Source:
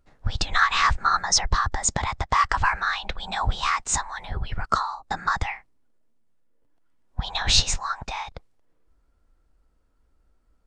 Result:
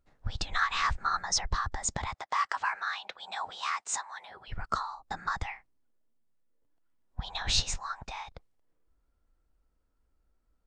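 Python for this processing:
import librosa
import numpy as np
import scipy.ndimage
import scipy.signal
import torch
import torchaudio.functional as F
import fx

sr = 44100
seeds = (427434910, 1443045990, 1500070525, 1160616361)

y = fx.highpass(x, sr, hz=470.0, slope=12, at=(2.14, 4.48))
y = F.gain(torch.from_numpy(y), -8.5).numpy()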